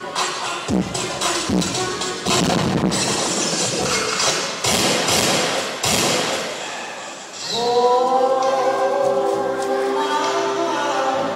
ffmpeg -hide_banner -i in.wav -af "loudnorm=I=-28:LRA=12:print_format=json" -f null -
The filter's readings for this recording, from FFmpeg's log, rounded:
"input_i" : "-19.2",
"input_tp" : "-5.4",
"input_lra" : "1.5",
"input_thresh" : "-29.3",